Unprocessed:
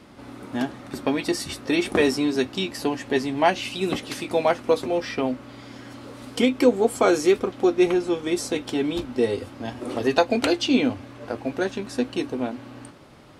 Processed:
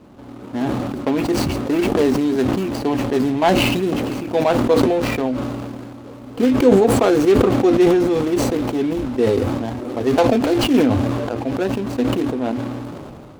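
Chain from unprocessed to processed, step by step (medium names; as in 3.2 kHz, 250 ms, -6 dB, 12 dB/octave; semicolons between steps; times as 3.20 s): median filter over 25 samples; decay stretcher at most 24 dB/s; trim +3.5 dB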